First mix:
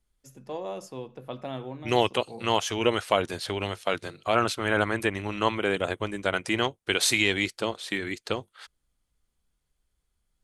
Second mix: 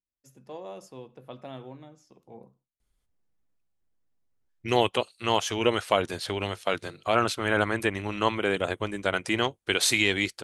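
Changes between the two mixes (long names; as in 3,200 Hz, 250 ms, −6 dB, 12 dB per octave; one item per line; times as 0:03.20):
first voice −5.5 dB
second voice: entry +2.80 s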